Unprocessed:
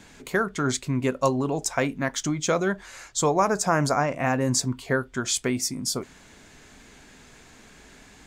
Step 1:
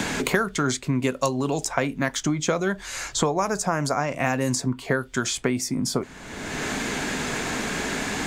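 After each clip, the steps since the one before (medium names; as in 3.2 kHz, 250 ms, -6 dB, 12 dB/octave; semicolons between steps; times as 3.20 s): three bands compressed up and down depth 100%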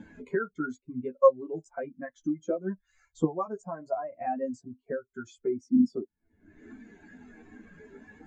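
chorus voices 6, 0.72 Hz, delay 11 ms, depth 2 ms; spectral contrast expander 2.5:1; trim -1.5 dB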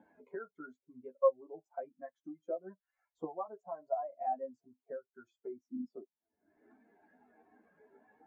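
band-pass filter 730 Hz, Q 2.6; trim -2.5 dB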